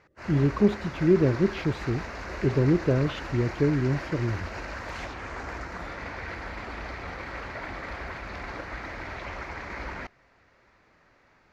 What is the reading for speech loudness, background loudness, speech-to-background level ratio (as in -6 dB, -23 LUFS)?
-25.5 LUFS, -37.0 LUFS, 11.5 dB